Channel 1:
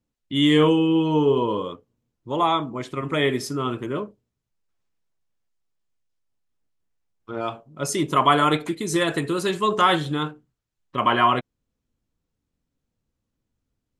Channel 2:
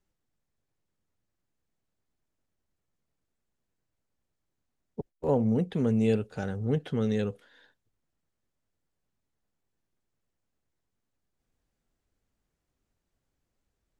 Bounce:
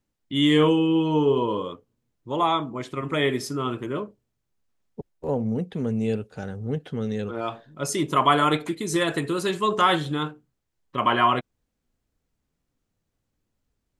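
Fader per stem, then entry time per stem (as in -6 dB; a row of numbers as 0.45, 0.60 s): -1.5, -0.5 dB; 0.00, 0.00 s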